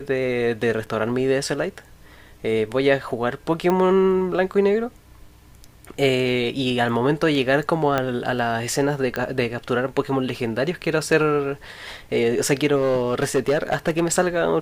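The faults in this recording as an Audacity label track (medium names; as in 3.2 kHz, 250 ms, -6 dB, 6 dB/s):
0.860000	0.870000	dropout 7.1 ms
3.700000	3.700000	pop -10 dBFS
7.980000	7.980000	pop -8 dBFS
9.160000	9.160000	pop -12 dBFS
12.750000	14.040000	clipped -14.5 dBFS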